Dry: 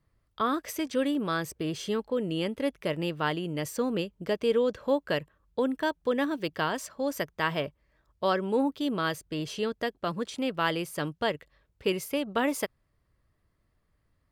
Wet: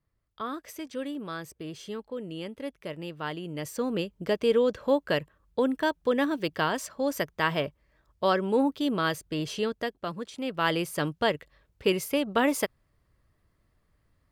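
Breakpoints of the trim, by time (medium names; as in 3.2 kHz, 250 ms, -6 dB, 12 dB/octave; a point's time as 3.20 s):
3.07 s -7 dB
4.19 s +2 dB
9.57 s +2 dB
10.32 s -5 dB
10.74 s +3 dB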